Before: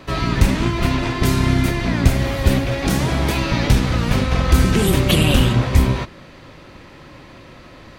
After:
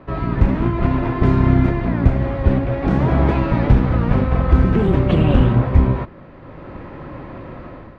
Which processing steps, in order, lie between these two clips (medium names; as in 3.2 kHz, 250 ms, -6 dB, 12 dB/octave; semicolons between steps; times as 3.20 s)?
low-pass 1.3 kHz 12 dB/octave; level rider gain up to 10 dB; trim -1 dB